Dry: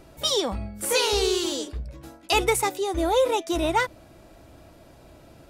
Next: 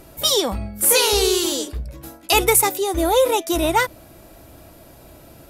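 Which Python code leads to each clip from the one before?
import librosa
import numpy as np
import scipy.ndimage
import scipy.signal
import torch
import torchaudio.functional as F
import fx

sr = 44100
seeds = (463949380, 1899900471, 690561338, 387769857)

y = fx.peak_eq(x, sr, hz=13000.0, db=14.5, octaves=0.77)
y = y * 10.0 ** (4.5 / 20.0)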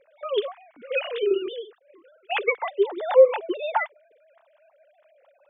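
y = fx.sine_speech(x, sr)
y = y * 10.0 ** (-5.0 / 20.0)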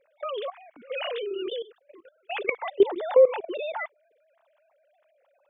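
y = fx.level_steps(x, sr, step_db=18)
y = y * 10.0 ** (5.0 / 20.0)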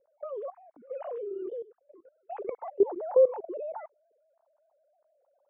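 y = fx.ladder_lowpass(x, sr, hz=1100.0, resonance_pct=20)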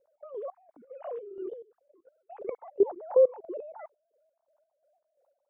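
y = fx.chopper(x, sr, hz=2.9, depth_pct=60, duty_pct=45)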